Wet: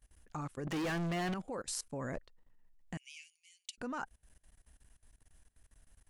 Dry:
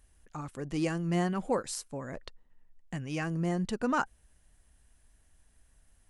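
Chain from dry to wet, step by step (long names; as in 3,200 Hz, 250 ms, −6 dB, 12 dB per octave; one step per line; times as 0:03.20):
output level in coarse steps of 21 dB
0:00.67–0:01.34: mid-hump overdrive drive 36 dB, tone 2,900 Hz, clips at −32 dBFS
0:02.97–0:03.78: Chebyshev high-pass with heavy ripple 2,200 Hz, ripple 3 dB
level +3 dB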